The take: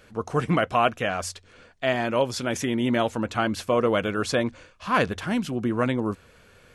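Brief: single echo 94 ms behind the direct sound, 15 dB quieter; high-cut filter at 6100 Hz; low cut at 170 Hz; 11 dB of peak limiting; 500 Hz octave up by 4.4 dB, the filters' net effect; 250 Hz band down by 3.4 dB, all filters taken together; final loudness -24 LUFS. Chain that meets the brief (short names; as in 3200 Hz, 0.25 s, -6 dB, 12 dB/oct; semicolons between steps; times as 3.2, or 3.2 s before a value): HPF 170 Hz; LPF 6100 Hz; bell 250 Hz -5 dB; bell 500 Hz +6.5 dB; limiter -16 dBFS; echo 94 ms -15 dB; gain +4 dB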